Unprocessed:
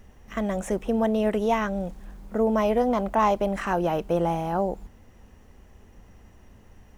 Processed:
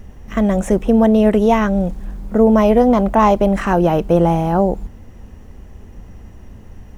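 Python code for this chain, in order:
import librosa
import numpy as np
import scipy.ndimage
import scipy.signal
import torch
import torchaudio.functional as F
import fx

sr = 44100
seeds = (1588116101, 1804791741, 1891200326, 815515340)

y = fx.low_shelf(x, sr, hz=410.0, db=8.0)
y = F.gain(torch.from_numpy(y), 6.5).numpy()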